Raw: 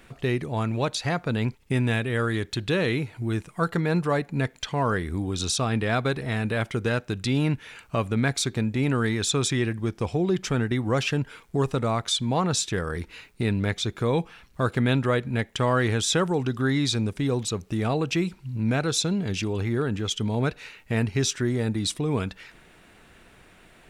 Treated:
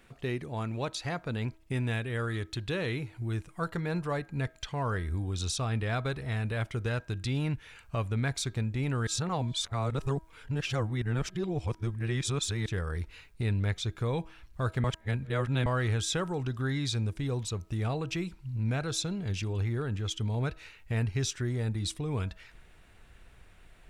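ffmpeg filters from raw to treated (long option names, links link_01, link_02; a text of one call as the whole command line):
ffmpeg -i in.wav -filter_complex "[0:a]asplit=5[link_01][link_02][link_03][link_04][link_05];[link_01]atrim=end=9.072[link_06];[link_02]atrim=start=9.068:end=12.662,asetpts=PTS-STARTPTS,areverse[link_07];[link_03]atrim=start=12.658:end=14.842[link_08];[link_04]atrim=start=14.838:end=15.662,asetpts=PTS-STARTPTS,areverse[link_09];[link_05]atrim=start=15.658[link_10];[link_06][link_07]acrossfade=duration=0.004:curve1=hsin:curve2=hsin[link_11];[link_11][link_08]acrossfade=duration=0.004:curve1=hsin:curve2=hsin[link_12];[link_12][link_09]acrossfade=duration=0.004:curve1=hsin:curve2=hsin[link_13];[link_13][link_10]acrossfade=duration=0.004:curve1=hsin:curve2=hsin,asubboost=boost=4.5:cutoff=98,bandreject=frequency=321.6:width_type=h:width=4,bandreject=frequency=643.2:width_type=h:width=4,bandreject=frequency=964.8:width_type=h:width=4,bandreject=frequency=1286.4:width_type=h:width=4,bandreject=frequency=1608:width_type=h:width=4,volume=-7.5dB" out.wav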